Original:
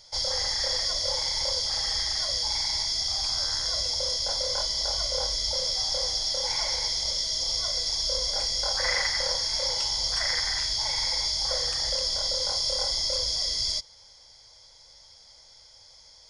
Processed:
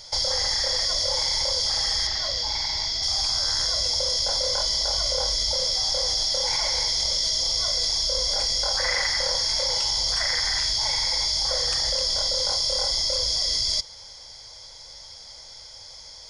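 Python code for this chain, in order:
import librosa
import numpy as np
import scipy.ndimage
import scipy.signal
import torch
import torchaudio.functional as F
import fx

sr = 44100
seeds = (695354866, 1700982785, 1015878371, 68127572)

p1 = fx.over_compress(x, sr, threshold_db=-32.0, ratio=-0.5)
p2 = x + (p1 * 10.0 ** (0.0 / 20.0))
y = fx.lowpass(p2, sr, hz=5100.0, slope=12, at=(2.07, 3.03))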